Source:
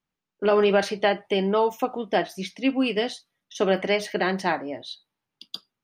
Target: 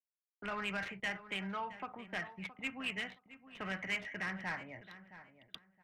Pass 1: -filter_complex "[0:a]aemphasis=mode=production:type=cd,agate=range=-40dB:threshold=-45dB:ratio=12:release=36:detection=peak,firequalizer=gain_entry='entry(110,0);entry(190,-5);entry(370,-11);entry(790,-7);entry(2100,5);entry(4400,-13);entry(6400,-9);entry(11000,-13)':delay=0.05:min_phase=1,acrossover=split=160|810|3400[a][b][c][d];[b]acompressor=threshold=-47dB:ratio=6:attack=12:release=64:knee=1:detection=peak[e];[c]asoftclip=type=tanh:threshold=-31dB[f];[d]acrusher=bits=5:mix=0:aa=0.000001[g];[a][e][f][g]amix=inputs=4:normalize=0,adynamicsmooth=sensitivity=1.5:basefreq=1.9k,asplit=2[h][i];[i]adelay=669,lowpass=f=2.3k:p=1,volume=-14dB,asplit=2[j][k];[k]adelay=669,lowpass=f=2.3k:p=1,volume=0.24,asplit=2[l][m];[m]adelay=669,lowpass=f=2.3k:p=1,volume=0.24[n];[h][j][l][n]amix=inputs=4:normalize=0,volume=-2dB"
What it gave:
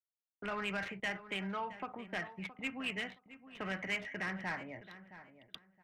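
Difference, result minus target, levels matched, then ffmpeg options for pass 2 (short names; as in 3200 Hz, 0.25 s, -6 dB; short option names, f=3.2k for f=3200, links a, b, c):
compressor: peak gain reduction -6 dB
-filter_complex "[0:a]aemphasis=mode=production:type=cd,agate=range=-40dB:threshold=-45dB:ratio=12:release=36:detection=peak,firequalizer=gain_entry='entry(110,0);entry(190,-5);entry(370,-11);entry(790,-7);entry(2100,5);entry(4400,-13);entry(6400,-9);entry(11000,-13)':delay=0.05:min_phase=1,acrossover=split=160|810|3400[a][b][c][d];[b]acompressor=threshold=-54dB:ratio=6:attack=12:release=64:knee=1:detection=peak[e];[c]asoftclip=type=tanh:threshold=-31dB[f];[d]acrusher=bits=5:mix=0:aa=0.000001[g];[a][e][f][g]amix=inputs=4:normalize=0,adynamicsmooth=sensitivity=1.5:basefreq=1.9k,asplit=2[h][i];[i]adelay=669,lowpass=f=2.3k:p=1,volume=-14dB,asplit=2[j][k];[k]adelay=669,lowpass=f=2.3k:p=1,volume=0.24,asplit=2[l][m];[m]adelay=669,lowpass=f=2.3k:p=1,volume=0.24[n];[h][j][l][n]amix=inputs=4:normalize=0,volume=-2dB"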